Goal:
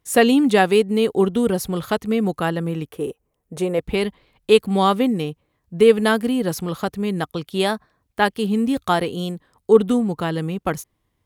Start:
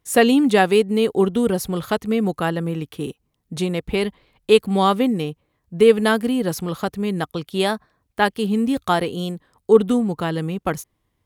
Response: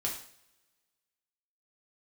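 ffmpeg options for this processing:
-filter_complex "[0:a]asettb=1/sr,asplit=3[a][b][c];[a]atrim=end=2.854[d];[b]atrim=start=2.85:end=3.79,asetpts=PTS-STARTPTS,afade=t=in:d=0.004:c=qsin,afade=t=out:st=0.936:d=0.004:c=qsin,equalizer=f=125:t=o:w=1:g=-5,equalizer=f=250:t=o:w=1:g=-5,equalizer=f=500:t=o:w=1:g=9,equalizer=f=4k:t=o:w=1:g=-10[e];[c]atrim=start=3.786[f];[d][e]acrossfade=d=0.004:c1=hsin:c2=qsin[g];[g][f]acrossfade=d=0.004:c1=qsin:c2=hsin"

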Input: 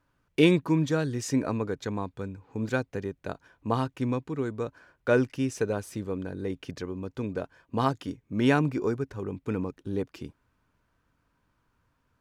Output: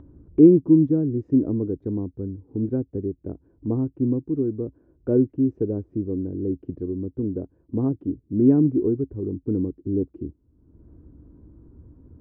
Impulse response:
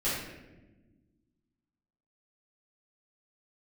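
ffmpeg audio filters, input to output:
-af "lowpass=f=330:t=q:w=3.4,acompressor=mode=upward:threshold=-35dB:ratio=2.5,equalizer=f=67:t=o:w=1:g=12"

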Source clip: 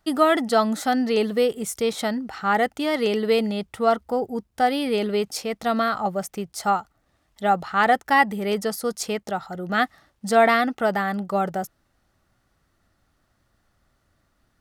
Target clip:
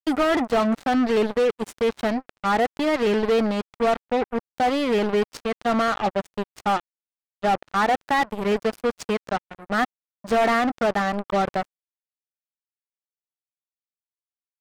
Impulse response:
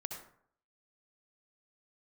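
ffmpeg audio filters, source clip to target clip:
-af "acrusher=bits=3:mix=0:aa=0.5,asoftclip=type=hard:threshold=-18.5dB,aemphasis=mode=reproduction:type=75kf,volume=2.5dB"

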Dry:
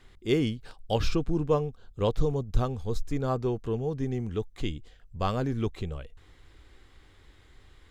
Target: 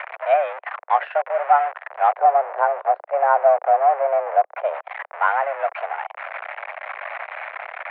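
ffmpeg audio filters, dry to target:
-filter_complex "[0:a]aeval=exprs='val(0)+0.5*0.0473*sgn(val(0))':c=same,asettb=1/sr,asplit=3[a][b][c];[a]atrim=end=2.124[d];[b]atrim=start=2.12:end=4.74,asetpts=PTS-STARTPTS,afade=t=in:d=0.004:c=qsin,afade=t=out:st=2.616:d=0.004:c=qsin,tiltshelf=f=830:g=8.5[e];[c]atrim=start=4.736[f];[d][e]acrossfade=d=0.004:c1=hsin:c2=qsin[g];[g][f]acrossfade=d=0.004:c1=qsin:c2=hsin,highpass=f=350:t=q:w=0.5412,highpass=f=350:t=q:w=1.307,lowpass=f=2k:t=q:w=0.5176,lowpass=f=2k:t=q:w=0.7071,lowpass=f=2k:t=q:w=1.932,afreqshift=280,volume=8.5dB"

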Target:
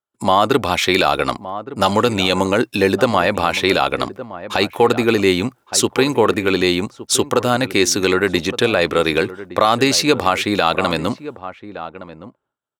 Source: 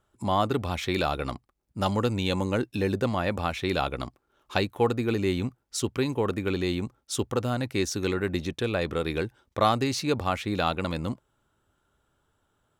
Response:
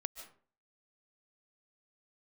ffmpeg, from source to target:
-filter_complex "[0:a]agate=range=-33dB:threshold=-53dB:ratio=3:detection=peak,highpass=f=430:p=1,asplit=2[a][b];[b]adelay=1166,volume=-15dB,highshelf=f=4k:g=-26.2[c];[a][c]amix=inputs=2:normalize=0,alimiter=level_in=16.5dB:limit=-1dB:release=50:level=0:latency=1,volume=-1dB"

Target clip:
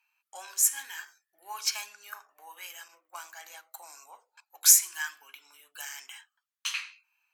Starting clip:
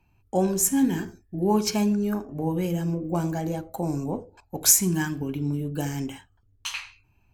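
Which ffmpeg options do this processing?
-filter_complex "[0:a]asettb=1/sr,asplit=3[a][b][c];[a]atrim=end=2.884[d];[b]atrim=start=2.88:end=3.4,asetpts=PTS-STARTPTS,afade=t=in:d=0.004:c=qsin,afade=t=out:st=0.516:d=0.004:c=qsin,agate=range=-33dB:threshold=-24dB:ratio=3:detection=peak[e];[c]atrim=start=3.396[f];[d][e]acrossfade=d=0.004:c1=hsin:c2=qsin[g];[g][f]acrossfade=d=0.004:c1=qsin:c2=hsin,highpass=f=1.2k:w=0.5412,highpass=f=1.2k:w=1.3066"

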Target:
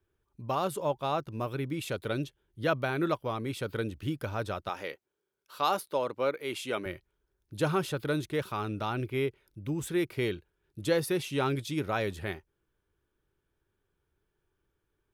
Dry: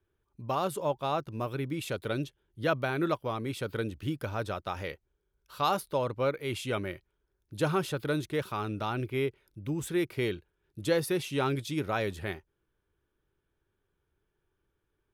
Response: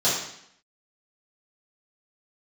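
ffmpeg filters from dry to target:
-filter_complex "[0:a]asettb=1/sr,asplit=3[a][b][c];[a]atrim=end=4.694[d];[b]atrim=start=4.69:end=6.86,asetpts=PTS-STARTPTS,afade=t=in:d=0.004:c=qsin,afade=t=out:st=2.166:d=0.004:c=qsin,highpass=250[e];[c]atrim=start=6.856[f];[d][e]acrossfade=d=0.004:c1=hsin:c2=qsin[g];[g][f]acrossfade=d=0.004:c1=qsin:c2=hsin"

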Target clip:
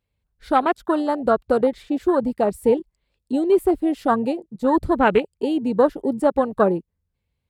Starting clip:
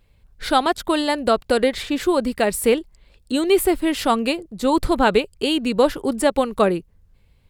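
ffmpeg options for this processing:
-af "afwtdn=0.0794,highpass=53"

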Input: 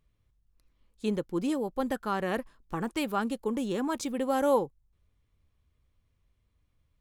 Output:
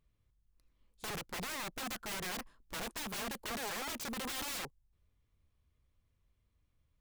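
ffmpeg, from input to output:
-af "aeval=exprs='(mod(35.5*val(0)+1,2)-1)/35.5':c=same,volume=-4dB"

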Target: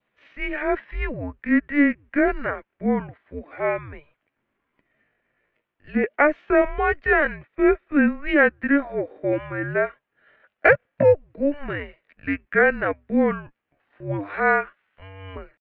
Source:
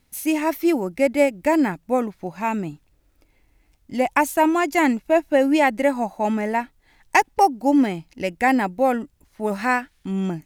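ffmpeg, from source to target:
-af "adynamicequalizer=threshold=0.0126:dfrequency=2000:dqfactor=2.5:tfrequency=2000:tqfactor=2.5:attack=5:release=100:ratio=0.375:range=2.5:mode=boostabove:tftype=bell,atempo=0.67,highpass=f=450:t=q:w=0.5412,highpass=f=450:t=q:w=1.307,lowpass=f=3.1k:t=q:w=0.5176,lowpass=f=3.1k:t=q:w=0.7071,lowpass=f=3.1k:t=q:w=1.932,afreqshift=-290"

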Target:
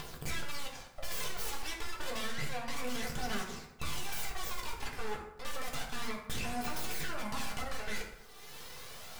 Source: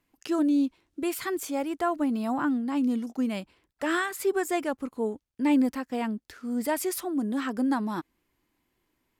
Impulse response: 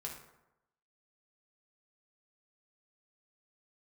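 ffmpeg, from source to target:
-filter_complex "[0:a]highpass=280,aemphasis=mode=production:type=bsi,asplit=2[a][b];[b]acompressor=mode=upward:threshold=-30dB:ratio=2.5,volume=0dB[c];[a][c]amix=inputs=2:normalize=0,acrossover=split=580 4900:gain=0.141 1 0.1[d][e][f];[d][e][f]amix=inputs=3:normalize=0,areverse,acompressor=threshold=-37dB:ratio=5,areverse,aeval=exprs='abs(val(0))':c=same,aphaser=in_gain=1:out_gain=1:delay=2.6:decay=0.44:speed=0.3:type=triangular,asoftclip=type=hard:threshold=-38dB[g];[1:a]atrim=start_sample=2205[h];[g][h]afir=irnorm=-1:irlink=0,volume=14.5dB"

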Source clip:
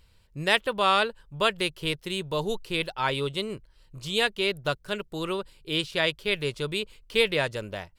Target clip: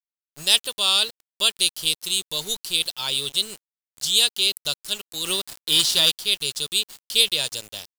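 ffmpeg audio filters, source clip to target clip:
-filter_complex "[0:a]aexciter=amount=14.7:drive=6.6:freq=3.1k,acrusher=bits=4:mix=0:aa=0.000001,asplit=3[a][b][c];[a]afade=t=out:st=5.24:d=0.02[d];[b]acontrast=78,afade=t=in:st=5.24:d=0.02,afade=t=out:st=6.11:d=0.02[e];[c]afade=t=in:st=6.11:d=0.02[f];[d][e][f]amix=inputs=3:normalize=0,volume=-9dB"

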